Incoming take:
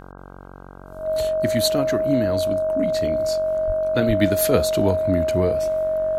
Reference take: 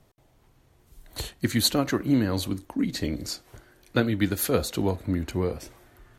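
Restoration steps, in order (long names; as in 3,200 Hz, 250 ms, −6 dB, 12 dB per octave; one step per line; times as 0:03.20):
hum removal 46.5 Hz, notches 34
notch filter 630 Hz, Q 30
0:03.66–0:03.78: high-pass filter 140 Hz 24 dB per octave
0:04.07–0:04.19: high-pass filter 140 Hz 24 dB per octave
level 0 dB, from 0:04.02 −4.5 dB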